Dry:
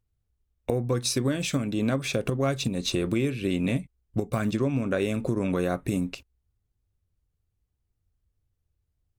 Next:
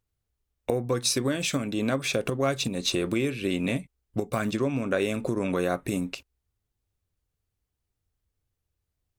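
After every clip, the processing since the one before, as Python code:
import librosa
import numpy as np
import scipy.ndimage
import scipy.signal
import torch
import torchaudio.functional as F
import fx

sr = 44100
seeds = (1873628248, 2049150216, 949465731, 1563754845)

y = fx.low_shelf(x, sr, hz=220.0, db=-9.0)
y = y * librosa.db_to_amplitude(2.5)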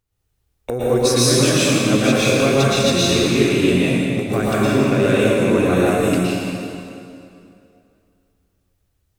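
y = 10.0 ** (-14.0 / 20.0) * np.tanh(x / 10.0 ** (-14.0 / 20.0))
y = fx.rev_plate(y, sr, seeds[0], rt60_s=2.6, hf_ratio=0.8, predelay_ms=100, drr_db=-8.5)
y = y * librosa.db_to_amplitude(3.0)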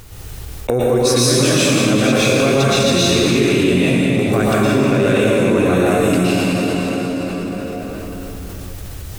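y = fx.env_flatten(x, sr, amount_pct=70)
y = y * librosa.db_to_amplitude(-1.0)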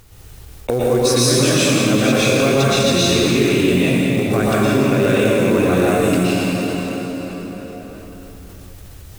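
y = fx.quant_companded(x, sr, bits=6)
y = fx.upward_expand(y, sr, threshold_db=-28.0, expansion=1.5)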